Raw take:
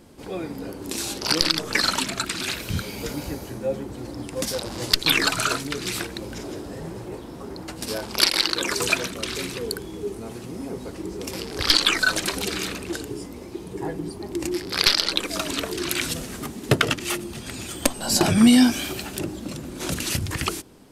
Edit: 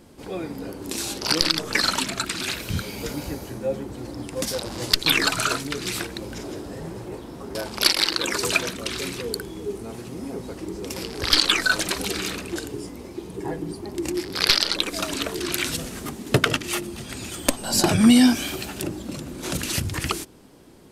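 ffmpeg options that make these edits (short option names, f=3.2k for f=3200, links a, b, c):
-filter_complex "[0:a]asplit=2[a][b];[a]atrim=end=7.552[c];[b]atrim=start=7.918[d];[c][d]acrossfade=d=0.004:c1=hsin:c2=hsin"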